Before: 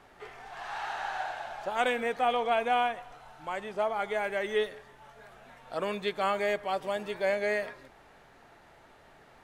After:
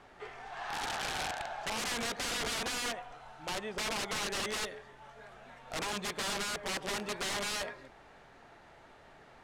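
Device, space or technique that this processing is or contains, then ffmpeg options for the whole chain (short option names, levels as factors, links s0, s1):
overflowing digital effects unit: -af "aeval=exprs='(mod(29.9*val(0)+1,2)-1)/29.9':c=same,lowpass=8700"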